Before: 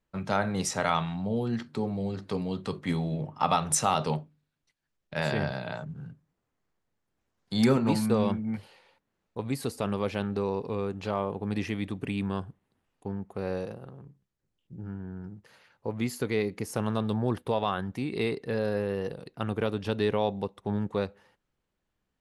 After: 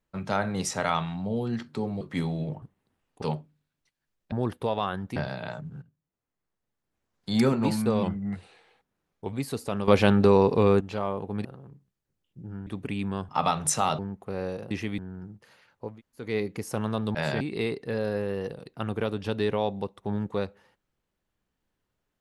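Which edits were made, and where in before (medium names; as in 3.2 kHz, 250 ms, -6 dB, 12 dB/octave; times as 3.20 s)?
2.01–2.73 s: delete
3.34–4.04 s: swap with 12.47–13.07 s
5.14–5.40 s: swap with 17.17–18.01 s
6.06–7.54 s: fade in, from -17 dB
8.27–9.45 s: speed 91%
10.00–10.93 s: gain +11 dB
11.57–11.85 s: swap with 13.79–15.01 s
15.92–16.27 s: room tone, crossfade 0.24 s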